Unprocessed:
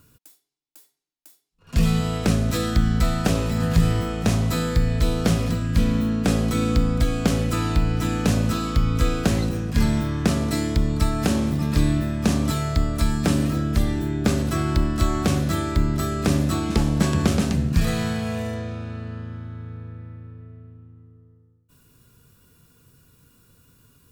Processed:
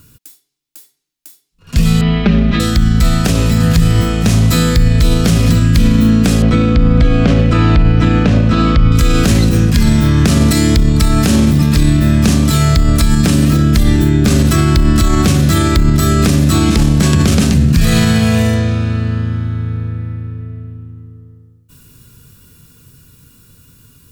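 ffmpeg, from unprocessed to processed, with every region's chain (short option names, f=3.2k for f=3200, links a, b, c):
-filter_complex "[0:a]asettb=1/sr,asplit=3[a][b][c];[a]atrim=end=2.014[d];[b]atrim=start=2.01:end=2.6,asetpts=PTS-STARTPTS,afade=t=in:d=0.004:c=qsin,afade=t=out:st=0.586:d=0.004:c=qsin,lowpass=f=3.3k:w=0.5412,lowpass=f=3.3k:w=1.3066,aecho=1:1:5:0.95,atrim=end_sample=26019[e];[c]atrim=start=2.596[f];[d][e]acrossfade=d=0.004:c1=hsin:c2=qsin[g];[g][f]acrossfade=d=0.004:c1=qsin:c2=hsin,asettb=1/sr,asplit=3[h][i][j];[h]atrim=end=6.424[k];[i]atrim=start=6.42:end=8.92,asetpts=PTS-STARTPTS,afade=t=in:d=0.004:c=qsin,afade=t=out:st=2.496:d=0.004:c=qsin,lowpass=2.8k,equalizer=f=590:w=3.1:g=5.5[l];[j]atrim=start=8.916[m];[k][l]acrossfade=d=0.004:c1=hsin:c2=qsin[n];[n][m]acrossfade=d=0.004:c1=qsin:c2=hsin,equalizer=f=720:w=0.58:g=-7.5,dynaudnorm=f=860:g=11:m=11.5dB,alimiter=level_in=13dB:limit=-1dB:release=50:level=0:latency=1,volume=-1dB"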